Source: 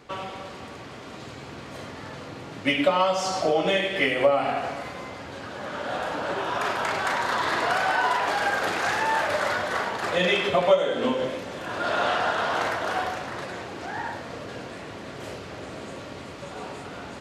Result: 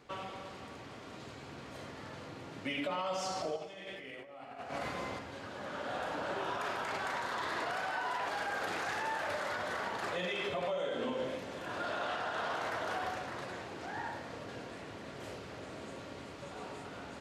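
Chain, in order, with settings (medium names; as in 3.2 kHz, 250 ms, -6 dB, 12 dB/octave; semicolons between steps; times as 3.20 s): peak limiter -19.5 dBFS, peak gain reduction 11.5 dB; 3.56–5.19 s: compressor with a negative ratio -34 dBFS, ratio -0.5; echo whose repeats swap between lows and highs 115 ms, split 2 kHz, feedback 58%, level -11.5 dB; trim -8.5 dB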